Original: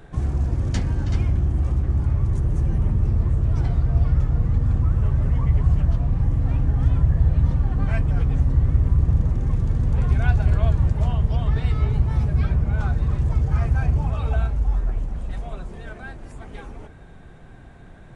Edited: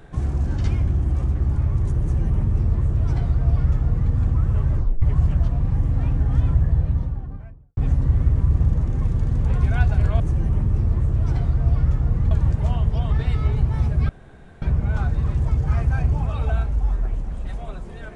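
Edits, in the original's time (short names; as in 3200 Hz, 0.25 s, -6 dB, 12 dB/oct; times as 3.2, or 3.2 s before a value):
0.47–0.95 cut
2.49–4.6 copy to 10.68
5.21 tape stop 0.29 s
6.94–8.25 studio fade out
12.46 insert room tone 0.53 s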